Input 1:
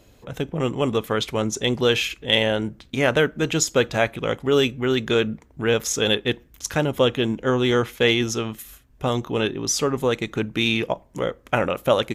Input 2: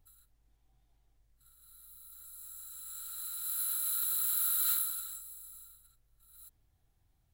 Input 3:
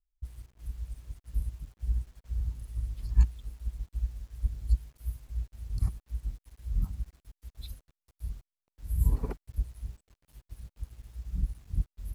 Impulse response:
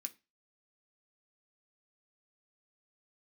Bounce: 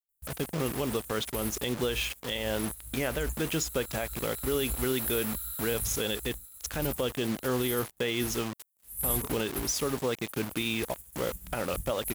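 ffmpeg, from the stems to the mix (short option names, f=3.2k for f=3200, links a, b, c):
-filter_complex "[0:a]equalizer=f=110:t=o:w=2.9:g=3,acrusher=bits=4:mix=0:aa=0.000001,volume=-6.5dB,asplit=2[a][b];[1:a]acompressor=threshold=-36dB:ratio=3,adelay=1000,volume=-1dB[c];[2:a]aexciter=amount=13.2:drive=7.9:freq=7.3k,volume=-2.5dB,asplit=3[d][e][f];[e]volume=-22dB[g];[f]volume=-6.5dB[h];[b]apad=whole_len=535572[i];[d][i]sidechaingate=range=-22dB:threshold=-36dB:ratio=16:detection=peak[j];[a][j]amix=inputs=2:normalize=0,acrusher=bits=9:mix=0:aa=0.000001,alimiter=limit=-19.5dB:level=0:latency=1:release=131,volume=0dB[k];[3:a]atrim=start_sample=2205[l];[g][l]afir=irnorm=-1:irlink=0[m];[h]aecho=0:1:89:1[n];[c][k][m][n]amix=inputs=4:normalize=0,lowshelf=f=87:g=-9.5"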